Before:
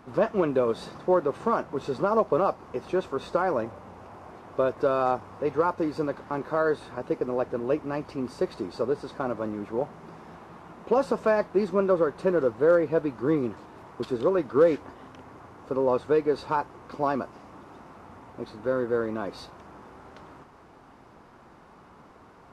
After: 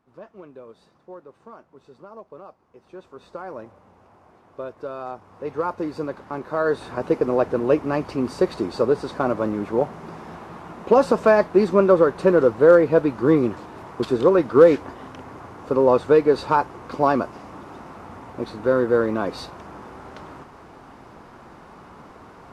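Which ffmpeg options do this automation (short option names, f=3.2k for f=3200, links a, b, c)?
-af "volume=7.5dB,afade=t=in:st=2.71:d=0.89:silence=0.316228,afade=t=in:st=5.15:d=0.58:silence=0.375837,afade=t=in:st=6.49:d=0.54:silence=0.421697"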